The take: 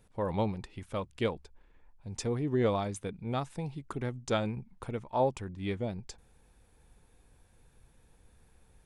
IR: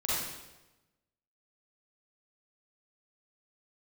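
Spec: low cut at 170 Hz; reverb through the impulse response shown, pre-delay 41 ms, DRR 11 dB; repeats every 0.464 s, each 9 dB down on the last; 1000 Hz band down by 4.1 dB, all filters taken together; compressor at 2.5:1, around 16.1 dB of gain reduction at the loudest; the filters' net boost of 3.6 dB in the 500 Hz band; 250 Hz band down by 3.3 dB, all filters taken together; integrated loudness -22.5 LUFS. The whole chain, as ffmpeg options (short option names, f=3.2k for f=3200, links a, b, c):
-filter_complex "[0:a]highpass=170,equalizer=f=250:t=o:g=-5,equalizer=f=500:t=o:g=7.5,equalizer=f=1k:t=o:g=-8.5,acompressor=threshold=-46dB:ratio=2.5,aecho=1:1:464|928|1392|1856:0.355|0.124|0.0435|0.0152,asplit=2[a][b];[1:a]atrim=start_sample=2205,adelay=41[c];[b][c]afir=irnorm=-1:irlink=0,volume=-19dB[d];[a][d]amix=inputs=2:normalize=0,volume=23dB"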